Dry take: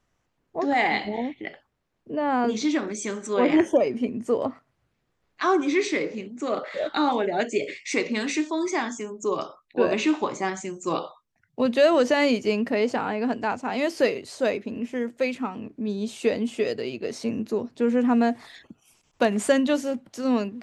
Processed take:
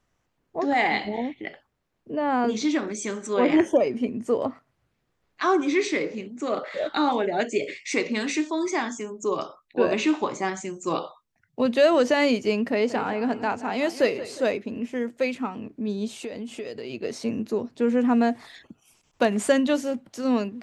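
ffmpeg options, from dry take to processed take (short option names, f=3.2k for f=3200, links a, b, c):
-filter_complex "[0:a]asettb=1/sr,asplit=3[a][b][c];[a]atrim=end=12.724[d];[b]atrim=start=12.72:end=14.52,asetpts=PTS-STARTPTS,afade=t=in:d=0.004:c=qsin,afade=t=out:st=1.796:d=0.004:c=qsin,asplit=2[e][f];[f]adelay=179,lowpass=f=3.7k:p=1,volume=-14dB,asplit=2[g][h];[h]adelay=179,lowpass=f=3.7k:p=1,volume=0.49,asplit=2[i][j];[j]adelay=179,lowpass=f=3.7k:p=1,volume=0.49,asplit=2[k][l];[l]adelay=179,lowpass=f=3.7k:p=1,volume=0.49,asplit=2[m][n];[n]adelay=179,lowpass=f=3.7k:p=1,volume=0.49[o];[e][g][i][k][m][o]amix=inputs=6:normalize=0,atrim=end_sample=79380[p];[c]atrim=start=14.516[q];[d][p]acrossfade=d=0.004:c1=hsin:c2=qsin[r];[r][q]acrossfade=d=0.004:c1=qsin:c2=hsin,asplit=3[s][t][u];[s]afade=t=out:st=16.07:d=0.02[v];[t]acompressor=threshold=-31dB:ratio=5:attack=3.2:release=140:knee=1:detection=peak,afade=t=in:st=16.07:d=0.02,afade=t=out:st=16.89:d=0.02[w];[u]afade=t=in:st=16.89:d=0.02[x];[v][w][x]amix=inputs=3:normalize=0"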